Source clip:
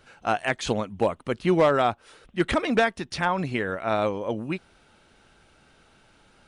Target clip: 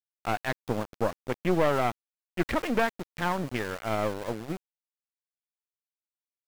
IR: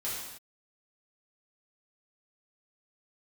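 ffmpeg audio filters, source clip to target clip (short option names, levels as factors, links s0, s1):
-af "afwtdn=0.0224,aeval=exprs='(tanh(7.08*val(0)+0.75)-tanh(0.75))/7.08':c=same,aeval=exprs='val(0)*gte(abs(val(0)),0.0168)':c=same"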